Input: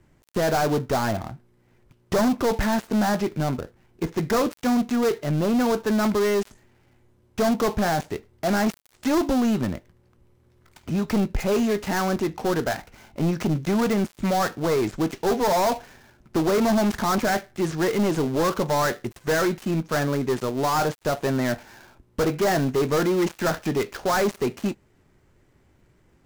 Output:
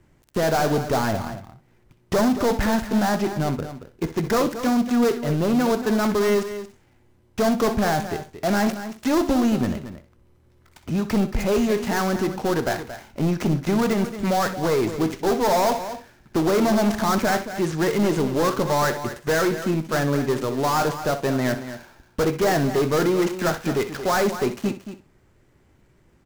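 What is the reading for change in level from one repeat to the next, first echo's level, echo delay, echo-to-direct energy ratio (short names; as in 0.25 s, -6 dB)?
no steady repeat, -13.0 dB, 63 ms, -9.0 dB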